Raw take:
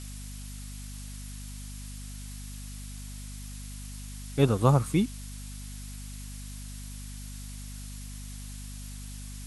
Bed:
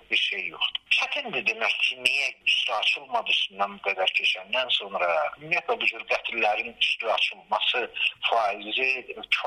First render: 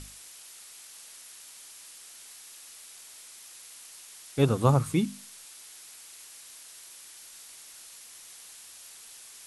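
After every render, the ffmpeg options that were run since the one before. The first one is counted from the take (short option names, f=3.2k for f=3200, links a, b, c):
-af "bandreject=f=50:t=h:w=6,bandreject=f=100:t=h:w=6,bandreject=f=150:t=h:w=6,bandreject=f=200:t=h:w=6,bandreject=f=250:t=h:w=6"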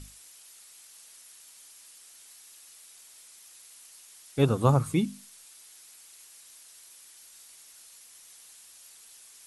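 -af "afftdn=nr=6:nf=-49"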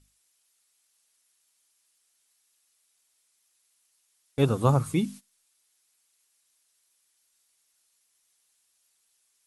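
-af "agate=range=-19dB:threshold=-40dB:ratio=16:detection=peak"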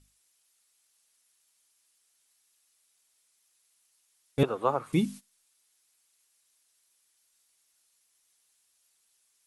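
-filter_complex "[0:a]asettb=1/sr,asplit=3[a][b][c];[a]atrim=end=4.434[d];[b]atrim=start=4.43:end=4.93,asetpts=PTS-STARTPTS,afade=t=in:d=0.004:c=qsin,afade=t=out:st=0.496:d=0.004:c=qsin,acrossover=split=350 3100:gain=0.0631 1 0.141[e][f][g];[e][f][g]amix=inputs=3:normalize=0[h];[c]atrim=start=4.926[i];[d][h]acrossfade=d=0.004:c1=hsin:c2=qsin[j];[j][i]acrossfade=d=0.004:c1=qsin:c2=hsin"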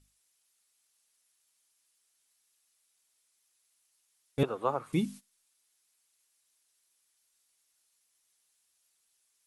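-af "volume=-3.5dB"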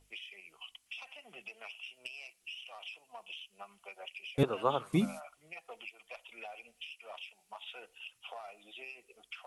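-filter_complex "[1:a]volume=-23dB[a];[0:a][a]amix=inputs=2:normalize=0"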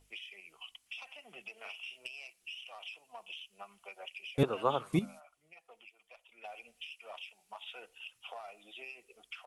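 -filter_complex "[0:a]asplit=3[a][b][c];[a]afade=t=out:st=1.56:d=0.02[d];[b]asplit=2[e][f];[f]adelay=42,volume=-3.5dB[g];[e][g]amix=inputs=2:normalize=0,afade=t=in:st=1.56:d=0.02,afade=t=out:st=2.06:d=0.02[h];[c]afade=t=in:st=2.06:d=0.02[i];[d][h][i]amix=inputs=3:normalize=0,asplit=3[j][k][l];[j]atrim=end=4.992[m];[k]atrim=start=4.988:end=6.442,asetpts=PTS-STARTPTS,volume=-9.5dB[n];[l]atrim=start=6.438[o];[m][n]acrossfade=d=0.004:c1=hsin:c2=hsin[p];[p][o]acrossfade=d=0.004:c1=hsin:c2=hsin"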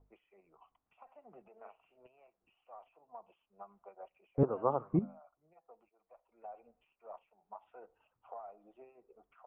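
-af "lowpass=f=1.1k:w=0.5412,lowpass=f=1.1k:w=1.3066"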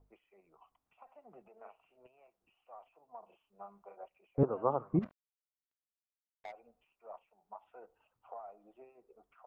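-filter_complex "[0:a]asettb=1/sr,asplit=3[a][b][c];[a]atrim=end=3.194[d];[b]atrim=start=3.19:end=4.04,asetpts=PTS-STARTPTS,afade=t=in:d=0.004:c=qsin,afade=t=out:st=0.846:d=0.004:c=qsin,asplit=2[e][f];[f]adelay=35,volume=-3.5dB[g];[e][g]amix=inputs=2:normalize=0,atrim=end_sample=37485[h];[c]atrim=start=4.036[i];[d][h]acrossfade=d=0.004:c1=hsin:c2=qsin[j];[j][i]acrossfade=d=0.004:c1=qsin:c2=hsin,asplit=3[k][l][m];[k]afade=t=out:st=5.01:d=0.02[n];[l]acrusher=bits=6:mix=0:aa=0.5,afade=t=in:st=5.01:d=0.02,afade=t=out:st=6.51:d=0.02[o];[m]afade=t=in:st=6.51:d=0.02[p];[n][o][p]amix=inputs=3:normalize=0"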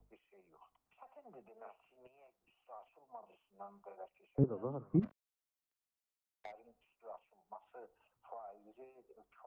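-filter_complex "[0:a]acrossover=split=160|390|1800[a][b][c][d];[c]alimiter=level_in=7dB:limit=-24dB:level=0:latency=1:release=302,volume=-7dB[e];[a][b][e][d]amix=inputs=4:normalize=0,acrossover=split=460[f][g];[g]acompressor=threshold=-48dB:ratio=4[h];[f][h]amix=inputs=2:normalize=0"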